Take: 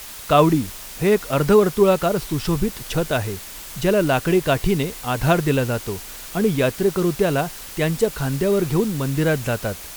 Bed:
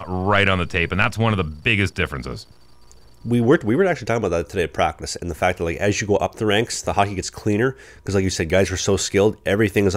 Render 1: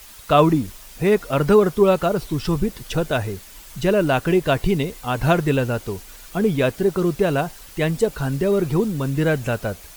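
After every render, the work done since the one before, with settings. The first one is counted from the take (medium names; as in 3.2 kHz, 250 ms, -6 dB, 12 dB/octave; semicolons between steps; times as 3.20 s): noise reduction 8 dB, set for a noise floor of -37 dBFS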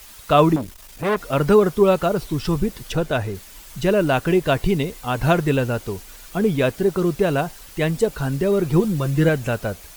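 0.56–1.20 s: transformer saturation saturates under 1 kHz; 2.92–3.35 s: treble shelf 5.3 kHz -5.5 dB; 8.73–9.29 s: comb 5.8 ms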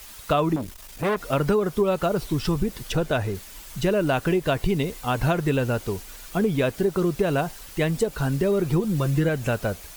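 compression 6:1, threshold -18 dBFS, peak gain reduction 9.5 dB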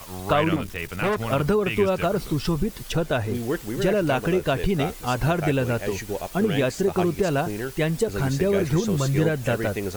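add bed -11.5 dB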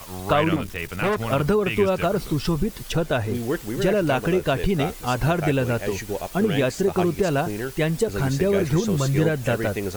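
trim +1 dB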